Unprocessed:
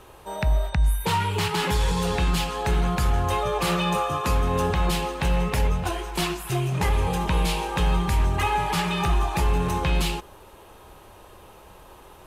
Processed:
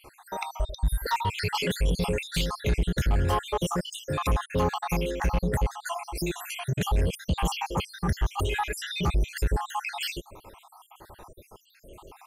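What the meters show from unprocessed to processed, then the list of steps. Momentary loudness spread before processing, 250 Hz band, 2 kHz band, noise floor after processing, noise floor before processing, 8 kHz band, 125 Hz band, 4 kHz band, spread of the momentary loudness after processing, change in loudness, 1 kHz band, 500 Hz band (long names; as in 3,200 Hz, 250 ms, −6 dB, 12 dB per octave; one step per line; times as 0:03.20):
3 LU, −4.0 dB, −4.0 dB, −60 dBFS, −48 dBFS, −3.5 dB, −4.5 dB, −3.5 dB, 6 LU, −4.5 dB, −5.0 dB, −3.5 dB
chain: time-frequency cells dropped at random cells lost 68%
soft clipping −20 dBFS, distortion −15 dB
level +2.5 dB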